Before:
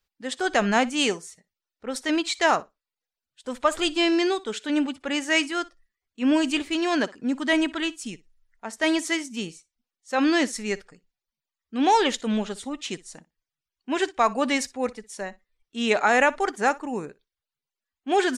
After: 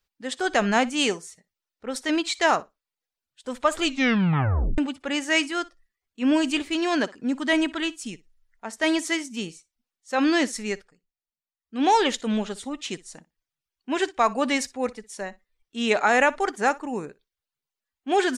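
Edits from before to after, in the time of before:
3.80 s: tape stop 0.98 s
10.67–11.85 s: dip -10.5 dB, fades 0.24 s

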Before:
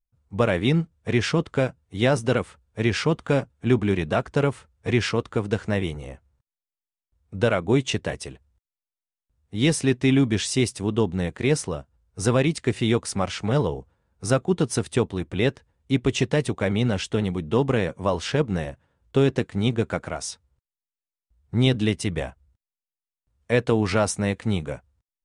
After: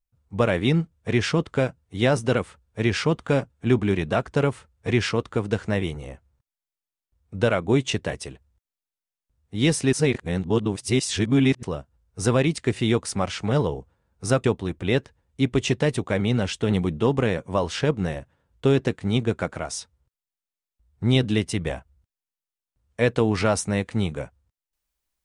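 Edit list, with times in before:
9.93–11.63 s: reverse
14.44–14.95 s: delete
17.20–17.48 s: gain +3.5 dB

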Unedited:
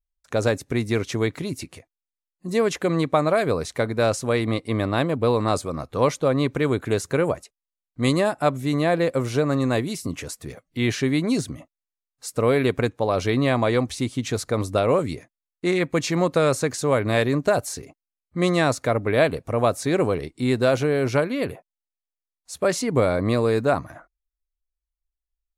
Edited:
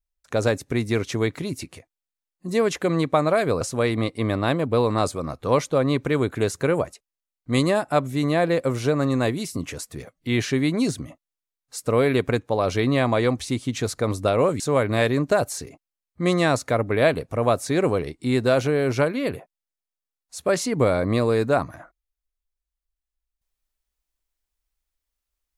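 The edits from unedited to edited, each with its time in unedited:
3.61–4.11 s: delete
15.10–16.76 s: delete

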